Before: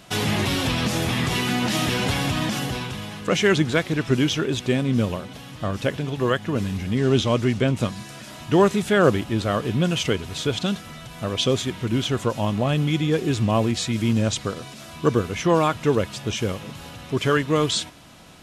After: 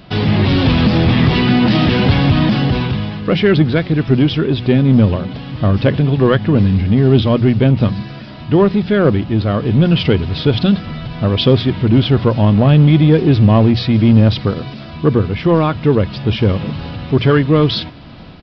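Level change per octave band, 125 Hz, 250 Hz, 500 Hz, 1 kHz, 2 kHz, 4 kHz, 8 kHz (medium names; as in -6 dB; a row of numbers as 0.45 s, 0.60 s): +12.5 dB, +10.5 dB, +7.0 dB, +4.5 dB, +4.0 dB, +4.5 dB, under -20 dB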